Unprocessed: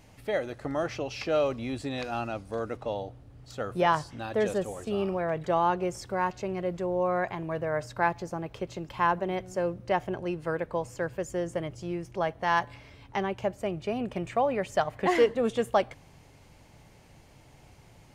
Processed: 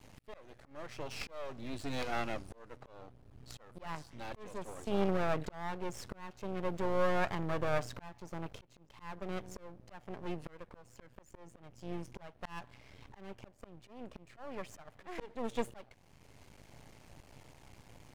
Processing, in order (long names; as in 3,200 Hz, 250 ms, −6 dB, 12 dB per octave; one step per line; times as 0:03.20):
stylus tracing distortion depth 0.037 ms
volume swells 742 ms
half-wave rectification
level +2 dB